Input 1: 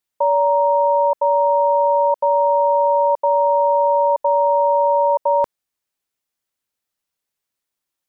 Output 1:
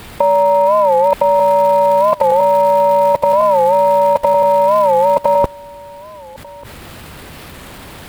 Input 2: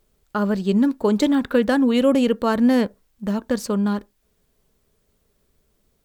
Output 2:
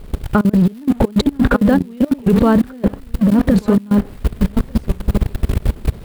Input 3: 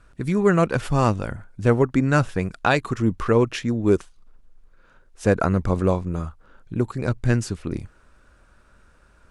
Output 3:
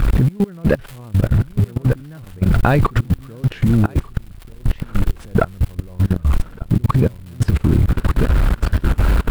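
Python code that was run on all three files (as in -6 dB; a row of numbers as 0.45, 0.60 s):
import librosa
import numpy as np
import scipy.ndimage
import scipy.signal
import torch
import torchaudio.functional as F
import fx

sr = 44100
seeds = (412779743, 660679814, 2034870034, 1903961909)

p1 = x + 0.5 * 10.0 ** (-31.0 / 20.0) * np.sign(x)
p2 = fx.riaa(p1, sr, side='playback')
p3 = fx.over_compress(p2, sr, threshold_db=-17.0, ratio=-0.5)
p4 = fx.highpass(p3, sr, hz=62.0, slope=6)
p5 = p4 + fx.echo_single(p4, sr, ms=1191, db=-9.5, dry=0)
p6 = fx.dmg_crackle(p5, sr, seeds[0], per_s=600.0, level_db=-32.0)
p7 = fx.level_steps(p6, sr, step_db=23)
p8 = fx.peak_eq(p7, sr, hz=6100.0, db=-7.5, octaves=0.65)
p9 = 10.0 ** (-11.5 / 20.0) * np.tanh(p8 / 10.0 ** (-11.5 / 20.0))
p10 = fx.record_warp(p9, sr, rpm=45.0, depth_cents=160.0)
y = librosa.util.normalize(p10) * 10.0 ** (-1.5 / 20.0)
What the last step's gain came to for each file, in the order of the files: +12.5, +12.5, +11.0 dB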